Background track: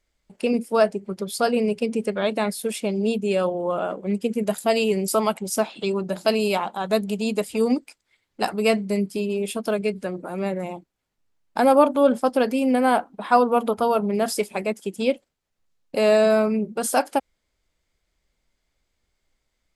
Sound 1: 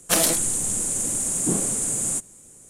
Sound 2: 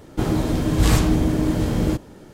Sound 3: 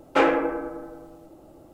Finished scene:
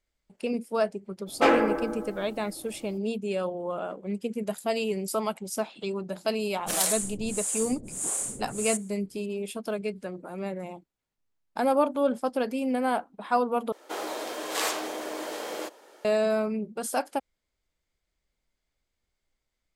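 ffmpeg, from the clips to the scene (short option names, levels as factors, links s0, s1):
-filter_complex "[0:a]volume=0.422[s0];[3:a]highshelf=f=5800:g=6.5[s1];[1:a]acrossover=split=520[s2][s3];[s2]aeval=exprs='val(0)*(1-1/2+1/2*cos(2*PI*1.6*n/s))':c=same[s4];[s3]aeval=exprs='val(0)*(1-1/2-1/2*cos(2*PI*1.6*n/s))':c=same[s5];[s4][s5]amix=inputs=2:normalize=0[s6];[2:a]highpass=f=480:w=0.5412,highpass=f=480:w=1.3066[s7];[s0]asplit=2[s8][s9];[s8]atrim=end=13.724[s10];[s7]atrim=end=2.33,asetpts=PTS-STARTPTS,volume=0.708[s11];[s9]atrim=start=16.046[s12];[s1]atrim=end=1.73,asetpts=PTS-STARTPTS,volume=0.841,afade=t=in:d=0.02,afade=t=out:st=1.71:d=0.02,adelay=1260[s13];[s6]atrim=end=2.69,asetpts=PTS-STARTPTS,volume=0.631,afade=t=in:d=0.004:c=hsin,afade=t=out:st=2.686:d=0.004:c=hsin,adelay=6570[s14];[s10][s11]acrossfade=d=0.004:c1=hsin:c2=hsin[s15];[s15][s12]acrossfade=d=0.004:c1=hsin:c2=hsin[s16];[s16][s13][s14]amix=inputs=3:normalize=0"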